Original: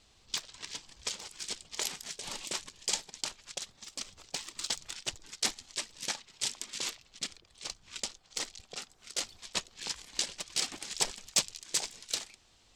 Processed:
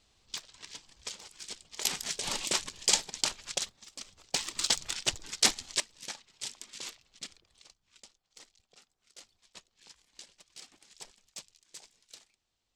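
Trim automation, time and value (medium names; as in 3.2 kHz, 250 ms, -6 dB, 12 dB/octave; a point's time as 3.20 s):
-4.5 dB
from 1.85 s +6.5 dB
from 3.69 s -4.5 dB
from 4.34 s +6.5 dB
from 5.80 s -6 dB
from 7.62 s -18 dB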